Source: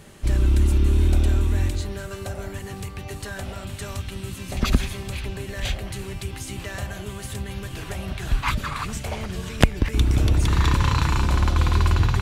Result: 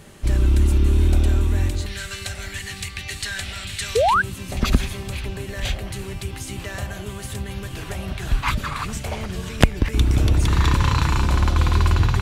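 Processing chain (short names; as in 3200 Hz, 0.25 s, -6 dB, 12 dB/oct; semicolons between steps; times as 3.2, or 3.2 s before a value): 1.86–4.14 graphic EQ 125/250/500/1000/2000/4000/8000 Hz -4/-5/-9/-5/+9/+9/+6 dB; 3.95–4.22 painted sound rise 410–1700 Hz -18 dBFS; gain +1.5 dB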